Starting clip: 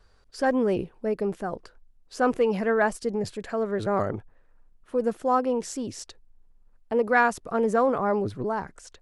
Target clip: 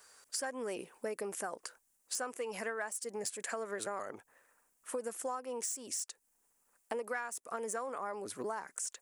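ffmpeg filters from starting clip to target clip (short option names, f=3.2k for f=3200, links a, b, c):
-filter_complex "[0:a]equalizer=f=250:t=o:w=1:g=6,equalizer=f=500:t=o:w=1:g=5,equalizer=f=1k:t=o:w=1:g=4,equalizer=f=2k:t=o:w=1:g=3,equalizer=f=4k:t=o:w=1:g=-8,equalizer=f=8k:t=o:w=1:g=7,acrossover=split=2700[a][b];[b]asoftclip=type=tanh:threshold=-30.5dB[c];[a][c]amix=inputs=2:normalize=0,aderivative,acompressor=threshold=-49dB:ratio=16,volume=14dB"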